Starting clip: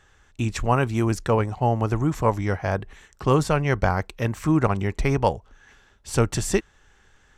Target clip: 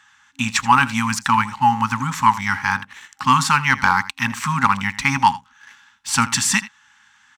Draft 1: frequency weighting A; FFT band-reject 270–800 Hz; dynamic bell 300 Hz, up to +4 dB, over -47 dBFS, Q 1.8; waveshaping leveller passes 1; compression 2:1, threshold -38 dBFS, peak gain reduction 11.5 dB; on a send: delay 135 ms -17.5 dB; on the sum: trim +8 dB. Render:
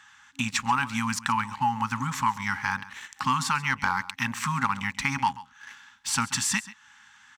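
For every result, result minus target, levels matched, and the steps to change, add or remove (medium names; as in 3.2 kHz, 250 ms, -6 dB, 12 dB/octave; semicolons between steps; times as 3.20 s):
echo 54 ms late; compression: peak gain reduction +11.5 dB
change: delay 81 ms -17.5 dB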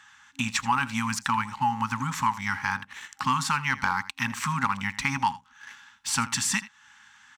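compression: peak gain reduction +11.5 dB
remove: compression 2:1, threshold -38 dBFS, peak gain reduction 11.5 dB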